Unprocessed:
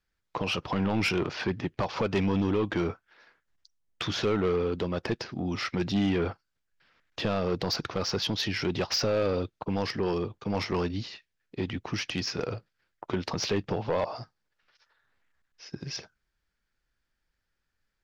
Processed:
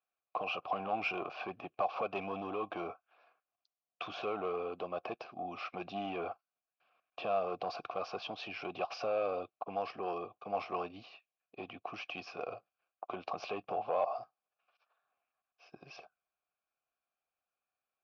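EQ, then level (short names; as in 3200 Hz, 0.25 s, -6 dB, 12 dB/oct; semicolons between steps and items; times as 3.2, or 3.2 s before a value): vowel filter a; air absorption 54 m; +6.0 dB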